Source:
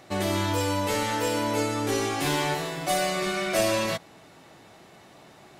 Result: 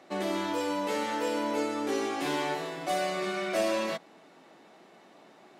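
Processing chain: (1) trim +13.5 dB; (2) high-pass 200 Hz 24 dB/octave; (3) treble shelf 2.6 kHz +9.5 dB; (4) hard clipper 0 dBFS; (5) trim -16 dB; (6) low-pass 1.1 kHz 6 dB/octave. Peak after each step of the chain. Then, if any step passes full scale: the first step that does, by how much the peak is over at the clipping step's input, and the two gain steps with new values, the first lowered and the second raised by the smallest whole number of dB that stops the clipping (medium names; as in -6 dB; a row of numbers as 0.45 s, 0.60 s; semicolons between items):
+1.0 dBFS, +0.5 dBFS, +6.0 dBFS, 0.0 dBFS, -16.0 dBFS, -18.5 dBFS; step 1, 6.0 dB; step 1 +7.5 dB, step 5 -10 dB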